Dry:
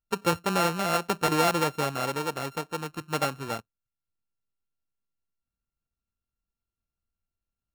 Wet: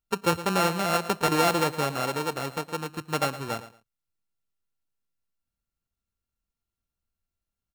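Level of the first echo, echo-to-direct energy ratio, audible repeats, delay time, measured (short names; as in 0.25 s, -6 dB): -14.5 dB, -14.5 dB, 2, 0.112 s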